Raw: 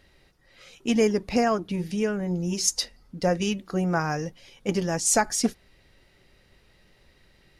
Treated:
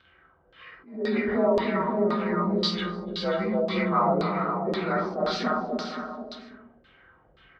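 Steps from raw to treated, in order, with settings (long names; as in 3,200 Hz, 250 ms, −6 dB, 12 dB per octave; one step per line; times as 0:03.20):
partials spread apart or drawn together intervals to 90%
parametric band 1,200 Hz +8.5 dB 0.99 octaves
convolution reverb RT60 0.50 s, pre-delay 4 ms, DRR 2.5 dB
brickwall limiter −16 dBFS, peak gain reduction 8 dB
high-pass filter 48 Hz
notch filter 6,800 Hz, Q 6.4
bouncing-ball delay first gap 290 ms, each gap 0.85×, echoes 5
auto-filter low-pass saw down 1.9 Hz 490–4,200 Hz
level that may rise only so fast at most 130 dB per second
level −2.5 dB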